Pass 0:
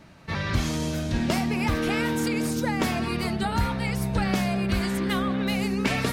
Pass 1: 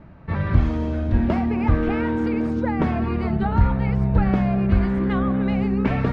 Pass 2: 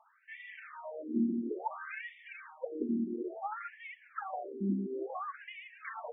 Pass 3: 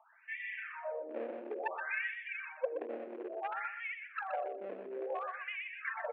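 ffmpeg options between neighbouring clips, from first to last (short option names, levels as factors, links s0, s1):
-af "lowpass=1500,lowshelf=f=110:g=12,bandreject=f=51.97:t=h:w=4,bandreject=f=103.94:t=h:w=4,bandreject=f=155.91:t=h:w=4,volume=1.33"
-af "aphaser=in_gain=1:out_gain=1:delay=3.2:decay=0.37:speed=1.7:type=triangular,afftfilt=real='re*between(b*sr/1024,270*pow(2600/270,0.5+0.5*sin(2*PI*0.58*pts/sr))/1.41,270*pow(2600/270,0.5+0.5*sin(2*PI*0.58*pts/sr))*1.41)':imag='im*between(b*sr/1024,270*pow(2600/270,0.5+0.5*sin(2*PI*0.58*pts/sr))/1.41,270*pow(2600/270,0.5+0.5*sin(2*PI*0.58*pts/sr))*1.41)':win_size=1024:overlap=0.75,volume=0.422"
-af "aeval=exprs='clip(val(0),-1,0.0188)':c=same,highpass=f=470:w=0.5412,highpass=f=470:w=1.3066,equalizer=f=540:t=q:w=4:g=6,equalizer=f=830:t=q:w=4:g=-4,equalizer=f=1200:t=q:w=4:g=-6,equalizer=f=1700:t=q:w=4:g=4,equalizer=f=2500:t=q:w=4:g=6,lowpass=f=2900:w=0.5412,lowpass=f=2900:w=1.3066,aecho=1:1:123|246|369:0.422|0.0801|0.0152,volume=1.41"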